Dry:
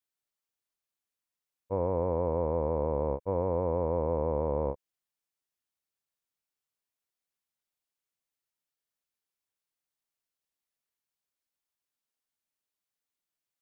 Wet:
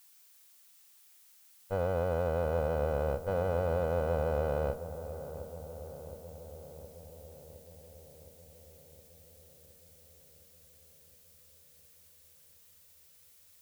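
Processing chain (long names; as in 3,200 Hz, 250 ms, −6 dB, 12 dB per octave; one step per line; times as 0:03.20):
lower of the sound and its delayed copy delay 1.6 ms
background noise blue −58 dBFS
feedback echo with a low-pass in the loop 715 ms, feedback 72%, low-pass 1,200 Hz, level −12 dB
level −2.5 dB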